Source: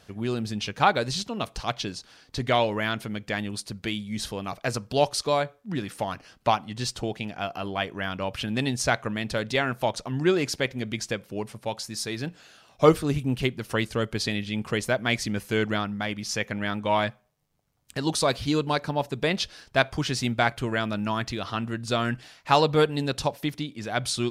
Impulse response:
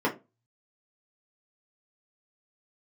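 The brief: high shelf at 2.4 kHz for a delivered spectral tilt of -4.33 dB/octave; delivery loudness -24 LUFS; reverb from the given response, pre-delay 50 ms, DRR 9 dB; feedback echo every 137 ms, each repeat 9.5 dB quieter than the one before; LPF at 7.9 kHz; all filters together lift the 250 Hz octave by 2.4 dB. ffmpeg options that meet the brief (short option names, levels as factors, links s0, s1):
-filter_complex "[0:a]lowpass=7900,equalizer=f=250:t=o:g=3,highshelf=f=2400:g=6,aecho=1:1:137|274|411|548:0.335|0.111|0.0365|0.012,asplit=2[s0][s1];[1:a]atrim=start_sample=2205,adelay=50[s2];[s1][s2]afir=irnorm=-1:irlink=0,volume=0.0841[s3];[s0][s3]amix=inputs=2:normalize=0"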